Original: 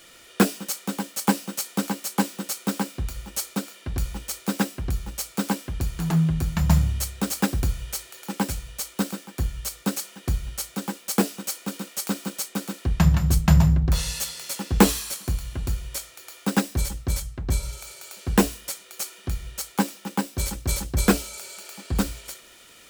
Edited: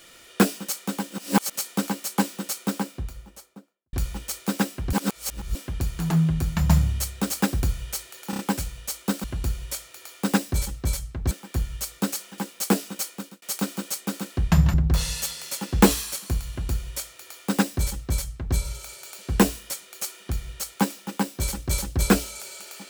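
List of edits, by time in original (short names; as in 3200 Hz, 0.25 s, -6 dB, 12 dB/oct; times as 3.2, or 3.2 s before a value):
1.1–1.56 reverse
2.5–3.93 studio fade out
4.93–5.55 reverse
8.3 stutter 0.03 s, 4 plays
10.22–10.86 cut
11.53–11.9 fade out
13.22–13.72 cut
15.47–17.54 copy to 9.15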